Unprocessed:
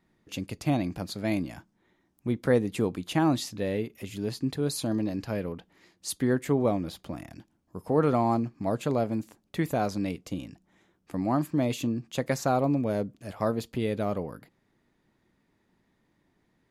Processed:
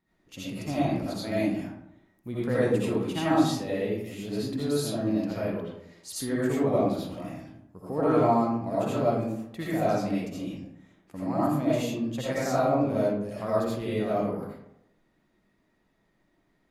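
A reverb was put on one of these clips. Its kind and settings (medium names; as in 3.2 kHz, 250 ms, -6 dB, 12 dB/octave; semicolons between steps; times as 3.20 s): algorithmic reverb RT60 0.79 s, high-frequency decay 0.5×, pre-delay 40 ms, DRR -9.5 dB; trim -8.5 dB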